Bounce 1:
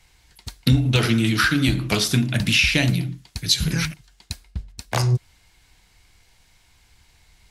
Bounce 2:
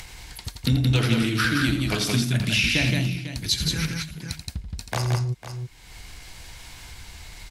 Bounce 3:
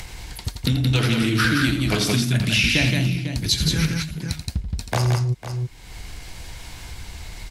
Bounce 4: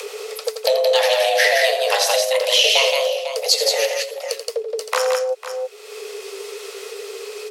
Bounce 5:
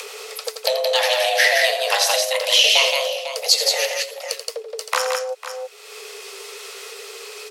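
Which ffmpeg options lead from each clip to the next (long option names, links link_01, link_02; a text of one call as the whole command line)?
ffmpeg -i in.wav -filter_complex "[0:a]asplit=2[link_01][link_02];[link_02]aecho=0:1:84|172|499:0.335|0.668|0.178[link_03];[link_01][link_03]amix=inputs=2:normalize=0,acompressor=mode=upward:threshold=-20dB:ratio=2.5,volume=-5dB" out.wav
ffmpeg -i in.wav -filter_complex "[0:a]acrossover=split=780[link_01][link_02];[link_01]alimiter=limit=-20dB:level=0:latency=1:release=324[link_03];[link_02]flanger=delay=4.9:depth=6.8:regen=-80:speed=1.7:shape=sinusoidal[link_04];[link_03][link_04]amix=inputs=2:normalize=0,volume=7dB" out.wav
ffmpeg -i in.wav -af "afreqshift=390,asubboost=boost=10.5:cutoff=160,volume=4.5dB" out.wav
ffmpeg -i in.wav -af "highpass=690,volume=1dB" out.wav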